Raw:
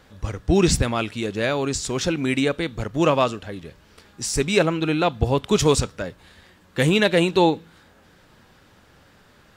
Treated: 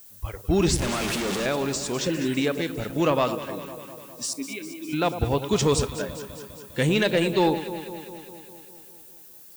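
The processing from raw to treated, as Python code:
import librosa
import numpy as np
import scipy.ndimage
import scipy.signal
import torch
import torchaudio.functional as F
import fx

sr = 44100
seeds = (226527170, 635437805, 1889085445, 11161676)

p1 = fx.clip_1bit(x, sr, at=(0.76, 1.46))
p2 = fx.spec_repair(p1, sr, seeds[0], start_s=2.06, length_s=0.26, low_hz=620.0, high_hz=2900.0, source='before')
p3 = fx.vowel_filter(p2, sr, vowel='i', at=(4.33, 4.93))
p4 = fx.dmg_noise_colour(p3, sr, seeds[1], colour='violet', level_db=-34.0)
p5 = fx.noise_reduce_blind(p4, sr, reduce_db=12)
p6 = 10.0 ** (-9.5 / 20.0) * np.tanh(p5 / 10.0 ** (-9.5 / 20.0))
p7 = p6 + fx.echo_alternate(p6, sr, ms=101, hz=1100.0, feedback_pct=80, wet_db=-10.0, dry=0)
y = F.gain(torch.from_numpy(p7), -2.5).numpy()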